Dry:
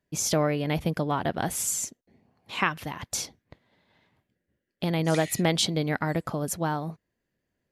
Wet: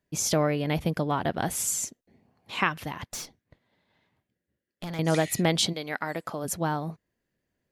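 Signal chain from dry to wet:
0:03.05–0:04.99: tube saturation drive 31 dB, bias 0.75
0:05.72–0:06.44: high-pass filter 1,000 Hz → 370 Hz 6 dB per octave

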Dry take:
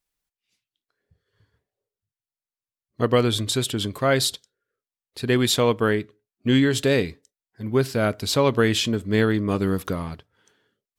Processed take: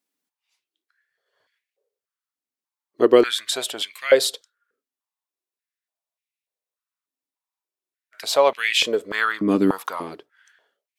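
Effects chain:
frozen spectrum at 0:04.93, 3.21 s
high-pass on a step sequencer 3.4 Hz 260–2,300 Hz

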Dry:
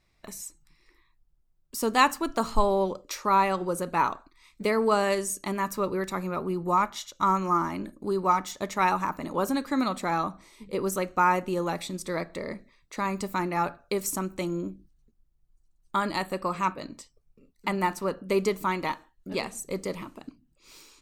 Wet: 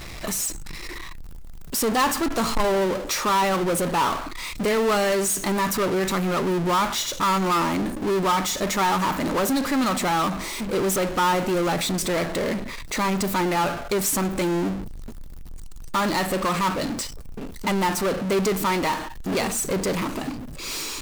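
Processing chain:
power curve on the samples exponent 0.35
level −6.5 dB

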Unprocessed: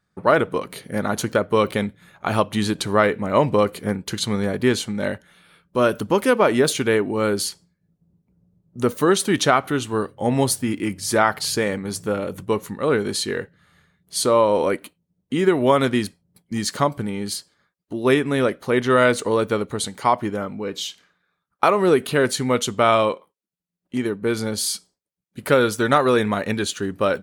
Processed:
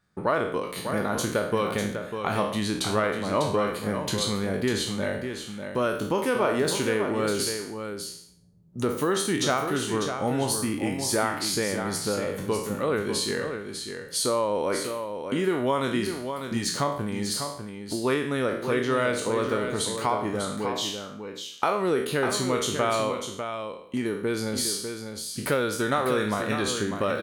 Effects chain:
peak hold with a decay on every bin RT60 0.50 s
downward compressor 2 to 1, threshold −29 dBFS, peak gain reduction 11 dB
on a send: single-tap delay 598 ms −7.5 dB

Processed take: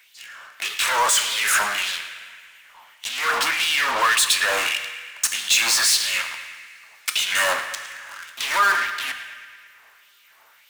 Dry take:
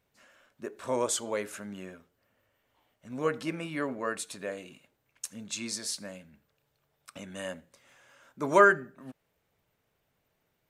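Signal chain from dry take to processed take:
in parallel at −6 dB: fuzz pedal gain 48 dB, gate −51 dBFS
on the sum: downward compressor, threshold −24 dBFS, peak gain reduction 12.5 dB
auto-filter high-pass sine 1.7 Hz 980–3,400 Hz
hum removal 151.9 Hz, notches 8
on a send: feedback echo with a band-pass in the loop 110 ms, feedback 62%, band-pass 2,000 Hz, level −14 dB
on the sum: coupled-rooms reverb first 0.96 s, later 2.9 s, from −26 dB, DRR 13.5 dB
power curve on the samples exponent 0.7
level +3 dB

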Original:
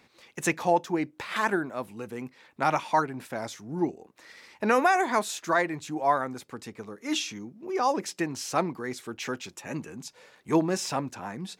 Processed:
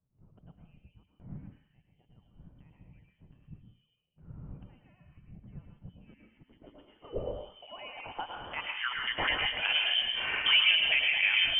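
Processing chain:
0:05.17–0:06.14: phase distortion by the signal itself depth 0.15 ms
camcorder AGC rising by 50 dB per second
dense smooth reverb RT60 0.76 s, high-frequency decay 0.5×, pre-delay 95 ms, DRR 1.5 dB
voice inversion scrambler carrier 3,300 Hz
dynamic equaliser 1,400 Hz, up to −4 dB, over −39 dBFS, Q 1.5
low-pass filter sweep 150 Hz → 2,300 Hz, 0:05.73–0:09.44
level −4 dB

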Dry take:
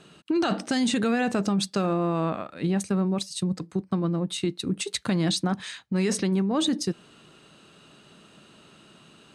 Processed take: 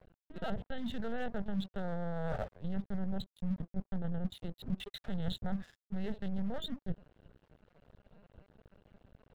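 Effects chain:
adaptive Wiener filter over 41 samples
reversed playback
downward compressor 12 to 1, threshold −37 dBFS, peak gain reduction 16.5 dB
reversed playback
linear-prediction vocoder at 8 kHz pitch kept
dynamic equaliser 210 Hz, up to +4 dB, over −50 dBFS, Q 0.87
phaser with its sweep stopped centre 1,600 Hz, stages 8
dead-zone distortion −58.5 dBFS
level +7.5 dB

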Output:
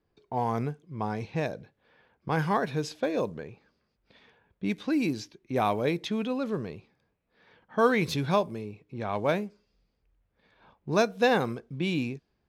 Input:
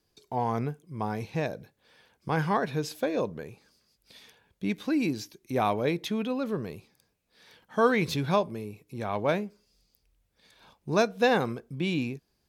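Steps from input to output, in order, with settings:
log-companded quantiser 8 bits
low-pass that shuts in the quiet parts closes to 1,900 Hz, open at −23.5 dBFS

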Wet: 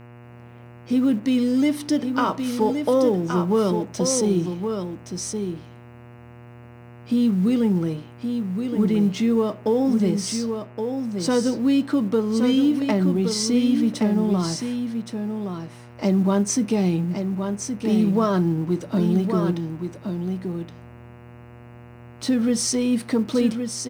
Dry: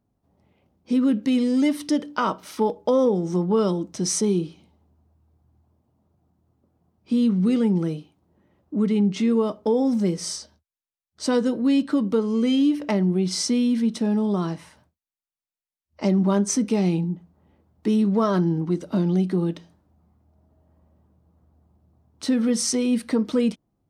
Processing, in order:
mu-law and A-law mismatch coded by mu
single-tap delay 1,120 ms −6.5 dB
hum with harmonics 120 Hz, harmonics 24, −44 dBFS −6 dB per octave

